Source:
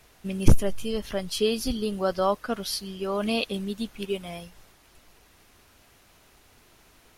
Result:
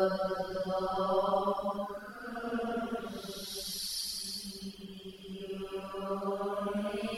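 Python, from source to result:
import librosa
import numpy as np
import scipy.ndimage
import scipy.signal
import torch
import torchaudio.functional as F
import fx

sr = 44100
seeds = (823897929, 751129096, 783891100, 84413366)

y = fx.paulstretch(x, sr, seeds[0], factor=5.9, window_s=0.25, from_s=2.05)
y = fx.dereverb_blind(y, sr, rt60_s=0.81)
y = F.gain(torch.from_numpy(y), -5.0).numpy()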